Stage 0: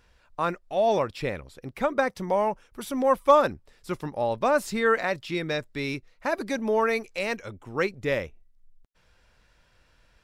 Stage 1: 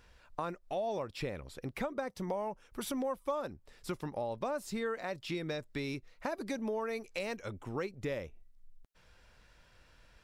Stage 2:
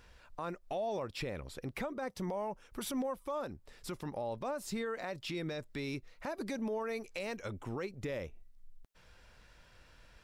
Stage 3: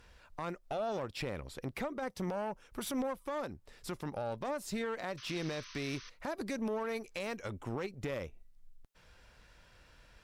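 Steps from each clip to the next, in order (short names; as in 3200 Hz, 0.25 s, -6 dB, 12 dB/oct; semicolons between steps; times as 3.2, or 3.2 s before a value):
dynamic EQ 1900 Hz, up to -5 dB, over -37 dBFS, Q 0.77; compressor 4:1, threshold -35 dBFS, peak gain reduction 17.5 dB
limiter -31.5 dBFS, peak gain reduction 8.5 dB; gain +2 dB
painted sound noise, 5.17–6.1, 970–6300 Hz -52 dBFS; added harmonics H 2 -10 dB, 8 -31 dB, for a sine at -26.5 dBFS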